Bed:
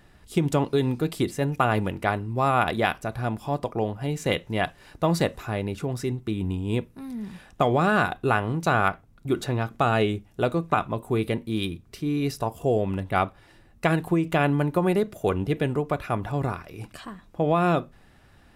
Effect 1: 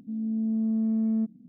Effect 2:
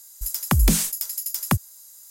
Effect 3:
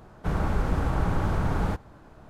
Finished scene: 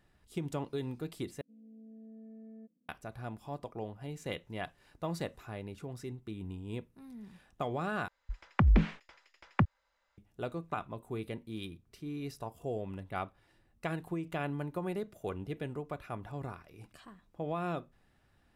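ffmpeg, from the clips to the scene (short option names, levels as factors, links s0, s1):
-filter_complex "[0:a]volume=0.2[s0];[1:a]asplit=3[s1][s2][s3];[s1]bandpass=f=530:t=q:w=8,volume=1[s4];[s2]bandpass=f=1840:t=q:w=8,volume=0.501[s5];[s3]bandpass=f=2480:t=q:w=8,volume=0.355[s6];[s4][s5][s6]amix=inputs=3:normalize=0[s7];[2:a]lowpass=f=2500:w=0.5412,lowpass=f=2500:w=1.3066[s8];[s0]asplit=3[s9][s10][s11];[s9]atrim=end=1.414[s12];[s7]atrim=end=1.48,asetpts=PTS-STARTPTS,volume=0.708[s13];[s10]atrim=start=2.886:end=8.084[s14];[s8]atrim=end=2.1,asetpts=PTS-STARTPTS,volume=0.531[s15];[s11]atrim=start=10.176[s16];[s12][s13]acrossfade=d=0.004:c1=hsin:c2=hsin[s17];[s17][s14]acrossfade=d=0.004:c1=hsin:c2=hsin[s18];[s18][s15]acrossfade=d=0.004:c1=hsin:c2=hsin[s19];[s19][s16]acrossfade=d=0.004:c1=hsin:c2=hsin"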